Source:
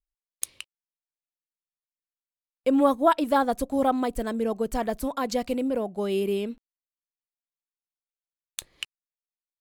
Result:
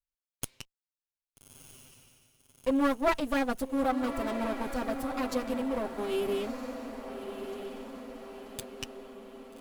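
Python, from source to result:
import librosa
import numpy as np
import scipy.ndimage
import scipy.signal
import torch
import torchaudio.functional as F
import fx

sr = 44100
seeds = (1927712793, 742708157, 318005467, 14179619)

p1 = fx.lower_of_two(x, sr, delay_ms=7.7)
p2 = p1 + fx.echo_diffused(p1, sr, ms=1269, feedback_pct=55, wet_db=-8.5, dry=0)
y = p2 * librosa.db_to_amplitude(-5.0)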